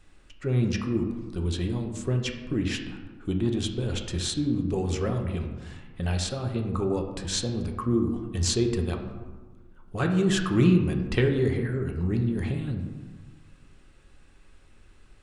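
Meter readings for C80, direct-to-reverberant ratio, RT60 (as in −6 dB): 8.5 dB, 3.0 dB, 1.4 s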